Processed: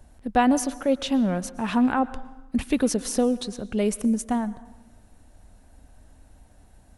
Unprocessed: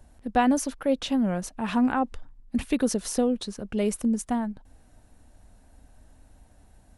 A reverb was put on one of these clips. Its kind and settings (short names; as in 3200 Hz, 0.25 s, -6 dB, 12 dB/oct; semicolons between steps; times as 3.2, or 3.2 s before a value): plate-style reverb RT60 1.1 s, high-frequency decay 0.7×, pre-delay 0.1 s, DRR 17 dB; gain +2 dB